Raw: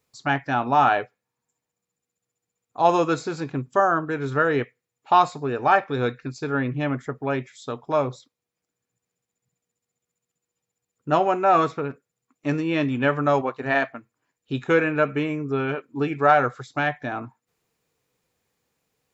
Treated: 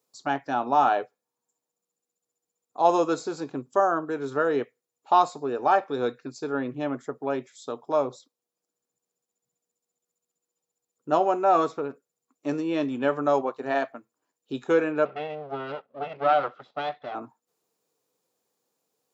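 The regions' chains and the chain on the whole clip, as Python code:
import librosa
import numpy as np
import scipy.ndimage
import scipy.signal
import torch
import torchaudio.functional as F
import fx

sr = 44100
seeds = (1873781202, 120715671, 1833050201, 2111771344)

y = fx.chain(x, sr, fx.lower_of_two(delay_ms=1.5),
    fx.lowpass(hz=3400.0, slope=24),
    fx.low_shelf(hz=250.0, db=-6.5), at=(15.05, 17.15))
y = scipy.signal.sosfilt(scipy.signal.butter(2, 290.0, 'highpass', fs=sr, output='sos'), y)
y = fx.peak_eq(y, sr, hz=2100.0, db=-11.0, octaves=1.3)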